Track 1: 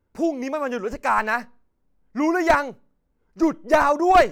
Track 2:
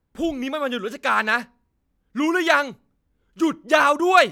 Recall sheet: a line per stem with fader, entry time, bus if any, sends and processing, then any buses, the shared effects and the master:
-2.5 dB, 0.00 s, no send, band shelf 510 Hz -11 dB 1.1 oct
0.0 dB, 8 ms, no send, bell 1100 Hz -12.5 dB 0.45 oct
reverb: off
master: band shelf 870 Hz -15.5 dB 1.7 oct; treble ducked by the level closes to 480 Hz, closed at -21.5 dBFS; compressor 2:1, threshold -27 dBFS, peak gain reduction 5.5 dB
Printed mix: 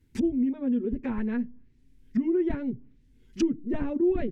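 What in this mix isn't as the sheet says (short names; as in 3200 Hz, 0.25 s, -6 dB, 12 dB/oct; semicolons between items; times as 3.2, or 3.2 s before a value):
stem 1 -2.5 dB -> +6.0 dB; stem 2 0.0 dB -> +6.0 dB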